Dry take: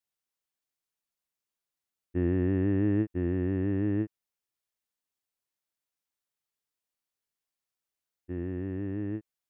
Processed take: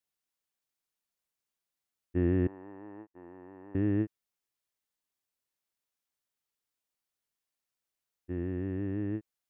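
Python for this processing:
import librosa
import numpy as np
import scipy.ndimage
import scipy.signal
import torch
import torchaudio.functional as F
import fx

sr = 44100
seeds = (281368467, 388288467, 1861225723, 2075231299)

y = fx.bandpass_q(x, sr, hz=910.0, q=4.1, at=(2.47, 3.75))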